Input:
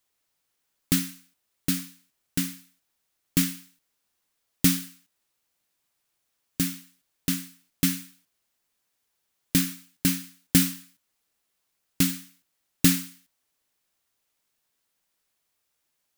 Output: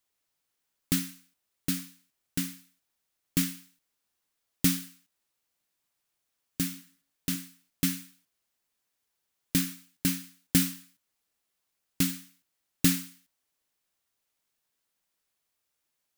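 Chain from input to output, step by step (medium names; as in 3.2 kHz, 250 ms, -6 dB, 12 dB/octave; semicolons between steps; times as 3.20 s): 6.67–7.36 s: de-hum 55.31 Hz, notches 38; trim -4 dB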